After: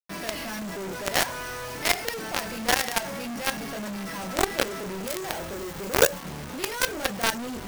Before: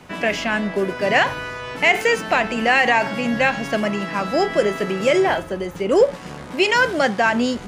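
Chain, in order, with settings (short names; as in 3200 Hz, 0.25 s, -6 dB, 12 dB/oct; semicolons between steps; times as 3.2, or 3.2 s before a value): air absorption 190 m; careless resampling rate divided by 6×, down filtered, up hold; chorus voices 2, 0.55 Hz, delay 26 ms, depth 1.8 ms; companded quantiser 2-bit; 5.28–6.2 high shelf 12000 Hz +5.5 dB; gain -8 dB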